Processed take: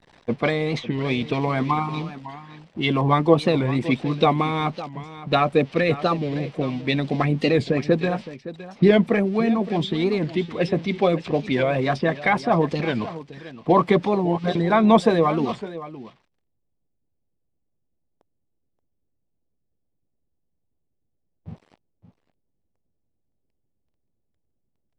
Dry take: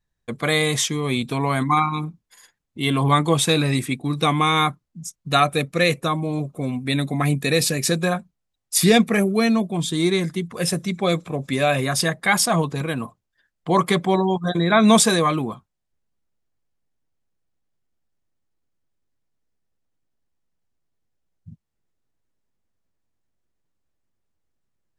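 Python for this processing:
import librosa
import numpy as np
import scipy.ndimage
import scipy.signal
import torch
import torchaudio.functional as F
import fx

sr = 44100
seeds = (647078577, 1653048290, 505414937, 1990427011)

p1 = x + 0.5 * 10.0 ** (-18.5 / 20.0) * np.diff(np.sign(x), prepend=np.sign(x[:1]))
p2 = fx.env_lowpass_down(p1, sr, base_hz=1600.0, full_db=-16.0)
p3 = fx.notch(p2, sr, hz=6700.0, q=9.5)
p4 = fx.env_lowpass(p3, sr, base_hz=650.0, full_db=-15.5)
p5 = fx.peak_eq(p4, sr, hz=1400.0, db=-9.5, octaves=0.87)
p6 = fx.hpss(p5, sr, part='percussive', gain_db=9)
p7 = fx.high_shelf(p6, sr, hz=9300.0, db=-7.0)
p8 = p7 + fx.echo_single(p7, sr, ms=565, db=-15.0, dry=0)
p9 = fx.record_warp(p8, sr, rpm=45.0, depth_cents=160.0)
y = p9 * librosa.db_to_amplitude(-2.0)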